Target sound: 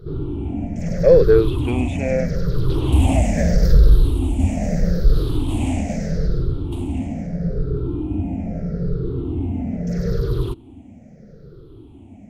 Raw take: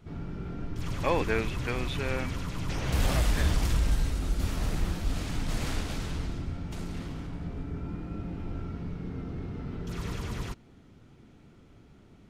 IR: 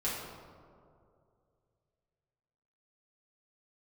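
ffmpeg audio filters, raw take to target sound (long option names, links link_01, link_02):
-af "afftfilt=real='re*pow(10,20/40*sin(2*PI*(0.6*log(max(b,1)*sr/1024/100)/log(2)-(-0.78)*(pts-256)/sr)))':imag='im*pow(10,20/40*sin(2*PI*(0.6*log(max(b,1)*sr/1024/100)/log(2)-(-0.78)*(pts-256)/sr)))':win_size=1024:overlap=0.75,acontrast=78,lowshelf=frequency=780:width_type=q:width=1.5:gain=10,volume=-8.5dB"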